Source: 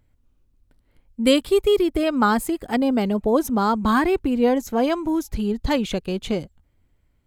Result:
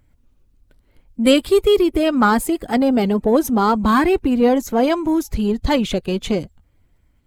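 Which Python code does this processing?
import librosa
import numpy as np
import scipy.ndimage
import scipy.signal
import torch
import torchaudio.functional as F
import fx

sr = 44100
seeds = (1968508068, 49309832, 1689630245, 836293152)

p1 = fx.spec_quant(x, sr, step_db=15)
p2 = 10.0 ** (-20.5 / 20.0) * np.tanh(p1 / 10.0 ** (-20.5 / 20.0))
p3 = p1 + (p2 * 10.0 ** (-8.5 / 20.0))
y = p3 * 10.0 ** (2.5 / 20.0)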